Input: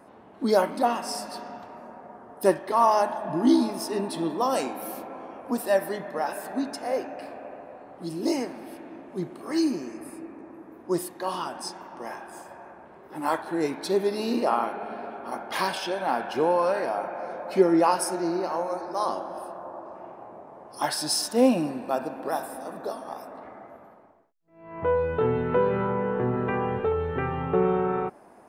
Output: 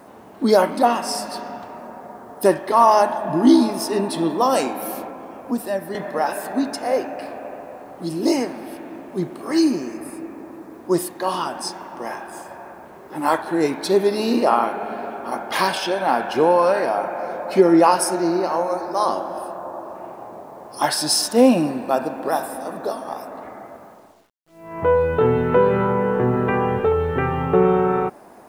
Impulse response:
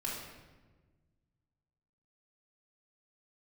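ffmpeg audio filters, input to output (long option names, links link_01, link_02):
-filter_complex "[0:a]asettb=1/sr,asplit=3[link_01][link_02][link_03];[link_01]atrim=end=5.094[link_04];[link_02]atrim=start=5.09:end=5.95,asetpts=PTS-STARTPTS,afade=type=in:duration=0.004:curve=qsin,afade=type=out:start_time=0.856:duration=0.004:curve=qsin,acrossover=split=280[link_05][link_06];[link_06]acompressor=threshold=-48dB:ratio=1.5[link_07];[link_05][link_07]amix=inputs=2:normalize=0[link_08];[link_03]atrim=start=5.946[link_09];[link_04][link_08]acrossfade=duration=0.004:curve1=hsin:curve2=qsin[link_10];[link_10][link_09]acrossfade=duration=0.004:curve1=qsin:curve2=hsin,acrusher=bits=10:mix=0:aa=0.000001,alimiter=level_in=9dB:limit=-1dB:release=50:level=0:latency=1,volume=-2dB"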